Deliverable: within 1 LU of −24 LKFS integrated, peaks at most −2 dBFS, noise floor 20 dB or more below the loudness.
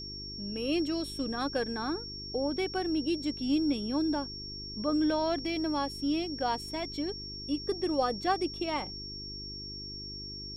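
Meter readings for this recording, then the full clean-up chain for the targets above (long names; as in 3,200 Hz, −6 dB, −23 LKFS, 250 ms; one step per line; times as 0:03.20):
mains hum 50 Hz; hum harmonics up to 400 Hz; level of the hum −45 dBFS; interfering tone 5,500 Hz; level of the tone −40 dBFS; integrated loudness −32.5 LKFS; sample peak −16.5 dBFS; target loudness −24.0 LKFS
→ hum removal 50 Hz, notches 8
notch filter 5,500 Hz, Q 30
level +8.5 dB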